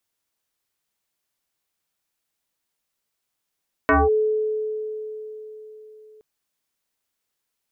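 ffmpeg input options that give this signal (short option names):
-f lavfi -i "aevalsrc='0.237*pow(10,-3*t/4.1)*sin(2*PI*431*t+4.2*clip(1-t/0.2,0,1)*sin(2*PI*0.83*431*t))':d=2.32:s=44100"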